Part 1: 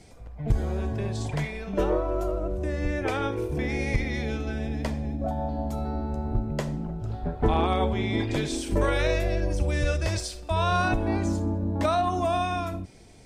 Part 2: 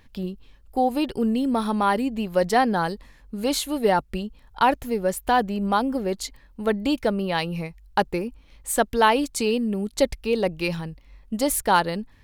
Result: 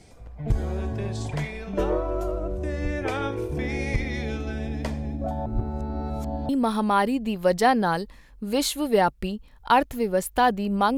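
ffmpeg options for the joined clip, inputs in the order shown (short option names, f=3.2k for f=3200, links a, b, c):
-filter_complex "[0:a]apad=whole_dur=10.97,atrim=end=10.97,asplit=2[a][b];[a]atrim=end=5.462[c];[b]atrim=start=5.458:end=6.492,asetpts=PTS-STARTPTS,areverse[d];[1:a]atrim=start=1.398:end=5.88[e];[c][d]acrossfade=d=0.004:c1=hsin:c2=hsin[f];[f][e]acrossfade=d=0.004:c1=hsin:c2=hsin"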